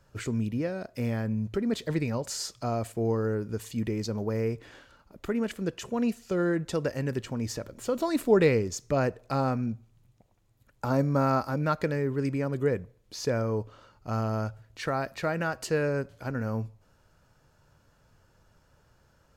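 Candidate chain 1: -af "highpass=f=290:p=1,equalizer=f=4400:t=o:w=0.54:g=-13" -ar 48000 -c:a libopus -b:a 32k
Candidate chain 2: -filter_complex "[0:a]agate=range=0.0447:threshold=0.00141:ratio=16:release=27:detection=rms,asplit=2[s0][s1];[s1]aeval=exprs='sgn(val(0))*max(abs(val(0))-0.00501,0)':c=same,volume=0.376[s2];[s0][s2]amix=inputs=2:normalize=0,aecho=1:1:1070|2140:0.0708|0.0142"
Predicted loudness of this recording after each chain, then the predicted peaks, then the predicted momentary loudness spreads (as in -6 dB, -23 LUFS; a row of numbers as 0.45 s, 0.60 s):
-32.5 LUFS, -27.0 LUFS; -11.5 dBFS, -7.0 dBFS; 10 LU, 9 LU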